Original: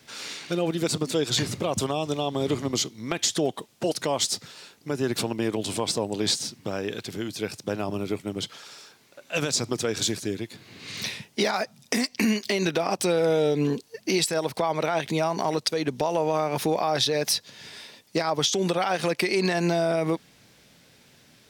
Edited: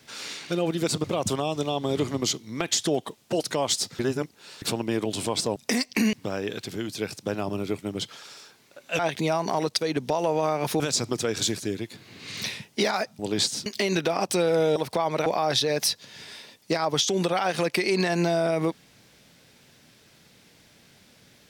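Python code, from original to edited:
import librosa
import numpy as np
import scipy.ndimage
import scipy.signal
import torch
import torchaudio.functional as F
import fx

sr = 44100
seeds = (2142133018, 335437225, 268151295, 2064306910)

y = fx.edit(x, sr, fx.cut(start_s=1.04, length_s=0.51),
    fx.reverse_span(start_s=4.5, length_s=0.63),
    fx.swap(start_s=6.07, length_s=0.47, other_s=11.79, other_length_s=0.57),
    fx.cut(start_s=13.46, length_s=0.94),
    fx.move(start_s=14.9, length_s=1.81, to_s=9.4), tone=tone)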